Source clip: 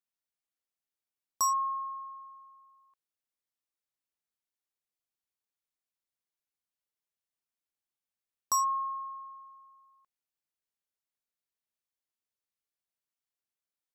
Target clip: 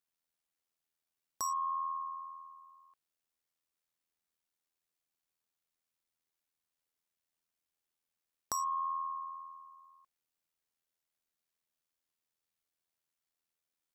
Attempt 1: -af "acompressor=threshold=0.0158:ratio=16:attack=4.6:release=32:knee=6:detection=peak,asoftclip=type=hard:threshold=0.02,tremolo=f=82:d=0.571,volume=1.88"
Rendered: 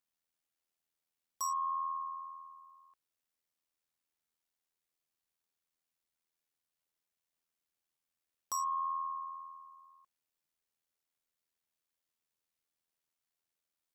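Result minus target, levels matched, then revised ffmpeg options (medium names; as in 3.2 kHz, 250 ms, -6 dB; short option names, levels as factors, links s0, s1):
hard clipper: distortion +15 dB
-af "acompressor=threshold=0.0158:ratio=16:attack=4.6:release=32:knee=6:detection=peak,asoftclip=type=hard:threshold=0.0631,tremolo=f=82:d=0.571,volume=1.88"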